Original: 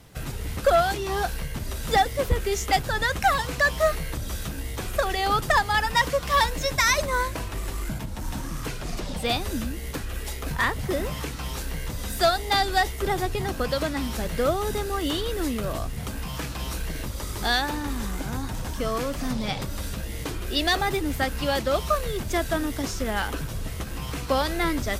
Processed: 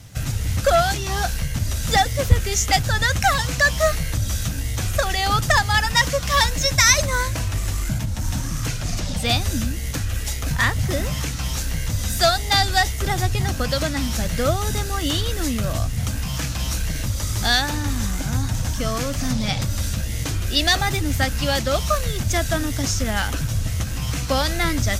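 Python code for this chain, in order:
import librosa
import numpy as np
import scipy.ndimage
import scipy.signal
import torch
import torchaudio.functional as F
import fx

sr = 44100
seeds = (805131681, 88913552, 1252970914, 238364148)

y = fx.graphic_eq_15(x, sr, hz=(100, 400, 1000, 6300), db=(10, -9, -5, 7))
y = y * 10.0 ** (5.0 / 20.0)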